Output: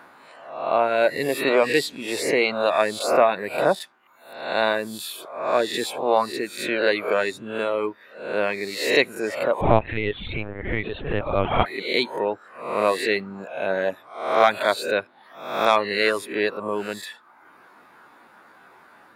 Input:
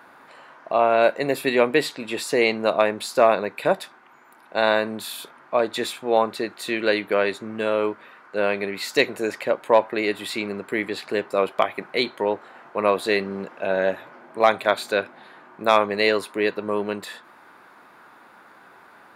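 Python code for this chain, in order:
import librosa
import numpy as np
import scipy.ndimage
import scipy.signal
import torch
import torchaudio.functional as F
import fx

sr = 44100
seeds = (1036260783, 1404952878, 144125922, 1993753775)

y = fx.spec_swells(x, sr, rise_s=0.77)
y = fx.lpc_vocoder(y, sr, seeds[0], excitation='pitch_kept', order=8, at=(9.61, 11.66))
y = fx.dereverb_blind(y, sr, rt60_s=0.83)
y = y * 10.0 ** (-1.0 / 20.0)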